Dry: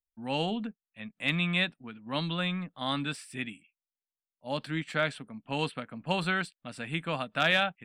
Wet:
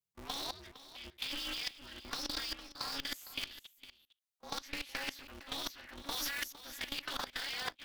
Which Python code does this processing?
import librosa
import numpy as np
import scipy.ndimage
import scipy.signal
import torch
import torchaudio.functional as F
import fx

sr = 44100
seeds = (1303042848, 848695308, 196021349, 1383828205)

p1 = fx.partial_stretch(x, sr, pct=111)
p2 = fx.tone_stack(p1, sr, knobs='10-0-10')
p3 = fx.notch_comb(p2, sr, f0_hz=190.0)
p4 = (np.mod(10.0 ** (39.5 / 20.0) * p3 + 1.0, 2.0) - 1.0) / 10.0 ** (39.5 / 20.0)
p5 = p3 + (p4 * librosa.db_to_amplitude(-8.0))
p6 = fx.level_steps(p5, sr, step_db=23)
p7 = fx.transient(p6, sr, attack_db=0, sustain_db=-4)
p8 = fx.over_compress(p7, sr, threshold_db=-51.0, ratio=-0.5)
p9 = fx.high_shelf(p8, sr, hz=6300.0, db=8.0, at=(6.11, 6.58))
p10 = p9 + fx.echo_single(p9, sr, ms=458, db=-15.0, dry=0)
p11 = p10 * np.sign(np.sin(2.0 * np.pi * 140.0 * np.arange(len(p10)) / sr))
y = p11 * librosa.db_to_amplitude(14.0)